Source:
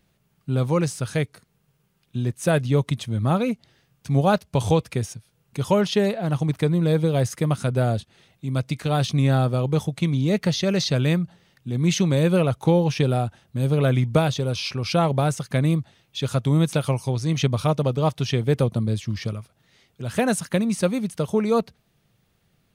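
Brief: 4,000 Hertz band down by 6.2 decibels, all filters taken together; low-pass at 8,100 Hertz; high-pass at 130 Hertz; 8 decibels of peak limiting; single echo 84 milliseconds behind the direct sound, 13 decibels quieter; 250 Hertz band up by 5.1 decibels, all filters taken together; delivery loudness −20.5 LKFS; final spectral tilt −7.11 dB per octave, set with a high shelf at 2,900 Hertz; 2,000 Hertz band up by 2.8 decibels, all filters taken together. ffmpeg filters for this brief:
ffmpeg -i in.wav -af "highpass=130,lowpass=8100,equalizer=frequency=250:width_type=o:gain=8.5,equalizer=frequency=2000:width_type=o:gain=7,highshelf=frequency=2900:gain=-4,equalizer=frequency=4000:width_type=o:gain=-7,alimiter=limit=-11dB:level=0:latency=1,aecho=1:1:84:0.224,volume=1.5dB" out.wav

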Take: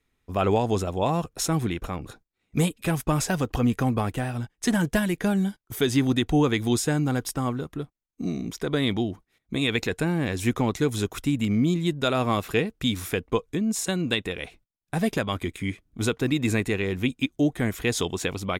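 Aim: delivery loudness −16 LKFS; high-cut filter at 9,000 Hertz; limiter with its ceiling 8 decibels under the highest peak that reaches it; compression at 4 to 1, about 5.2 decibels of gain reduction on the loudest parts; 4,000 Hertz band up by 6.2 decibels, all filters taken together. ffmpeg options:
ffmpeg -i in.wav -af "lowpass=9000,equalizer=frequency=4000:width_type=o:gain=7.5,acompressor=threshold=-23dB:ratio=4,volume=14dB,alimiter=limit=-4.5dB:level=0:latency=1" out.wav

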